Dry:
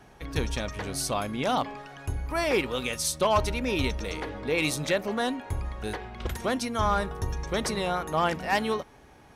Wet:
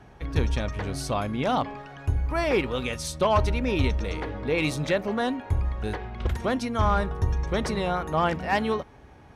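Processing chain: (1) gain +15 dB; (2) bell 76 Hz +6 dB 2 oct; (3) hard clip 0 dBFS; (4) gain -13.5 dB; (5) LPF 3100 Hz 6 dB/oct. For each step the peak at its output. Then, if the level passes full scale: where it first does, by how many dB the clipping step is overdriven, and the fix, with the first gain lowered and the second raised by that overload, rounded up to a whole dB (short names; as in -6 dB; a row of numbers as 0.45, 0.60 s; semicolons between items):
+1.0, +3.5, 0.0, -13.5, -13.5 dBFS; step 1, 3.5 dB; step 1 +11 dB, step 4 -9.5 dB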